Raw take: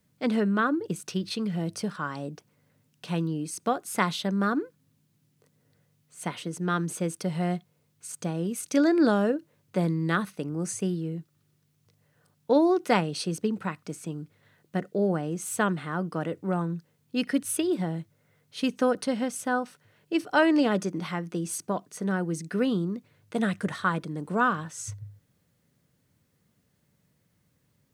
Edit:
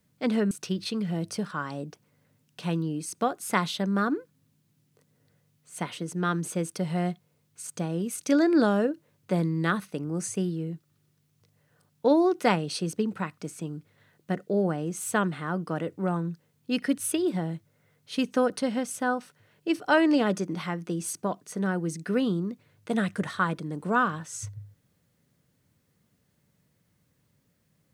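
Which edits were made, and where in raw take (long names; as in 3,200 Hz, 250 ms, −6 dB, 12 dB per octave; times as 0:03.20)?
0:00.51–0:00.96: remove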